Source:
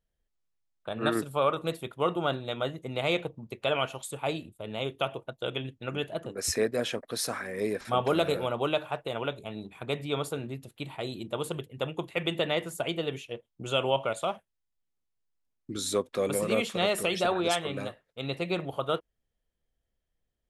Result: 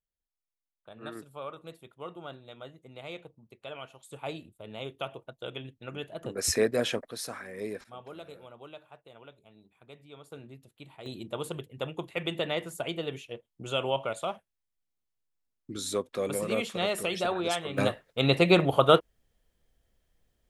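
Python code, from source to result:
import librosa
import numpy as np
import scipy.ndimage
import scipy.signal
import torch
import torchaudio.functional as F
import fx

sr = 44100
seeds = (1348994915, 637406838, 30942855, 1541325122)

y = fx.gain(x, sr, db=fx.steps((0.0, -14.0), (4.11, -6.0), (6.23, 2.0), (7.08, -6.0), (7.84, -19.0), (10.32, -11.0), (11.06, -2.5), (17.78, 10.0)))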